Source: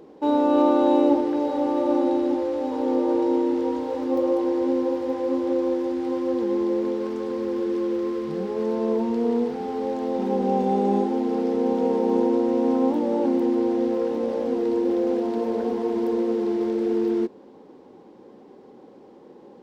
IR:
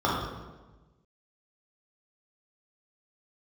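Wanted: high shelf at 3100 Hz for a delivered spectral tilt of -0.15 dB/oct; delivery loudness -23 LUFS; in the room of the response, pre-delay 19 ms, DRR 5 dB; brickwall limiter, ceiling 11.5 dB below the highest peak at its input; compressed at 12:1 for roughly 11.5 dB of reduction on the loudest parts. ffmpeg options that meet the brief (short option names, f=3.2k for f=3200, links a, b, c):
-filter_complex "[0:a]highshelf=f=3.1k:g=-6,acompressor=threshold=-26dB:ratio=12,alimiter=level_in=5.5dB:limit=-24dB:level=0:latency=1,volume=-5.5dB,asplit=2[a][b];[1:a]atrim=start_sample=2205,adelay=19[c];[b][c]afir=irnorm=-1:irlink=0,volume=-21dB[d];[a][d]amix=inputs=2:normalize=0,volume=12dB"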